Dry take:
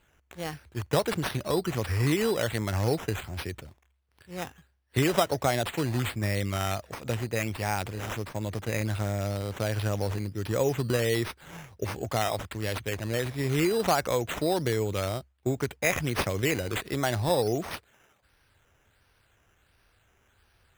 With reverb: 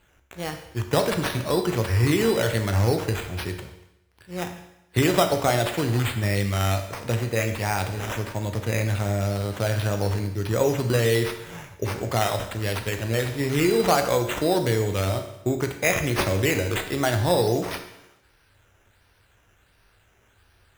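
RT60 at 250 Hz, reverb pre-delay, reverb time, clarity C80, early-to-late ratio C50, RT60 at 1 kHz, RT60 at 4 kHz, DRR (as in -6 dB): 0.90 s, 11 ms, 0.85 s, 10.5 dB, 8.5 dB, 0.90 s, 0.85 s, 5.0 dB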